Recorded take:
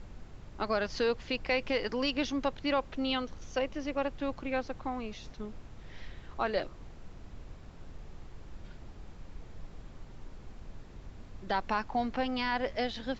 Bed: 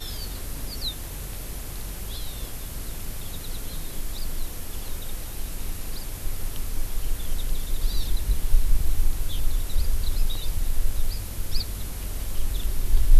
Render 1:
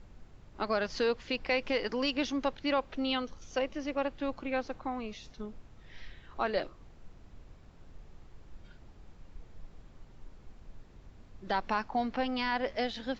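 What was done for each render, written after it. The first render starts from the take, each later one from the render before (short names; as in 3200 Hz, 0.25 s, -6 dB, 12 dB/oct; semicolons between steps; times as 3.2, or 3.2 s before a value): noise print and reduce 6 dB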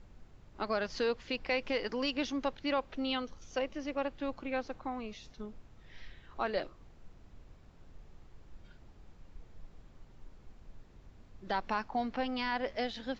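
gain -2.5 dB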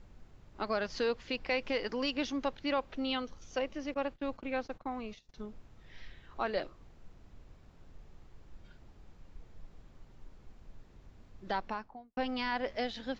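3.94–5.34 gate -49 dBFS, range -21 dB; 11.46–12.17 studio fade out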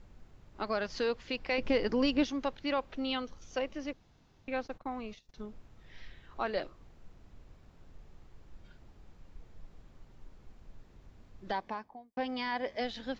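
1.58–2.24 low shelf 490 Hz +10 dB; 3.93–4.48 room tone; 11.52–12.81 notch comb 1400 Hz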